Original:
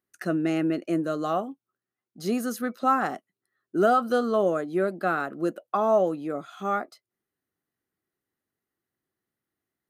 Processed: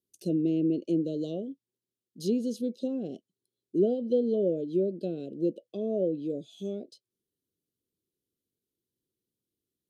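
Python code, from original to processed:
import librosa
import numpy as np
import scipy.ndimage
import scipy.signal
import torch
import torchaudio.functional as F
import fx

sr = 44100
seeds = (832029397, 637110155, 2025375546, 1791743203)

y = fx.env_lowpass_down(x, sr, base_hz=1700.0, full_db=-20.0)
y = scipy.signal.sosfilt(scipy.signal.ellip(3, 1.0, 40, [500.0, 3200.0], 'bandstop', fs=sr, output='sos'), y)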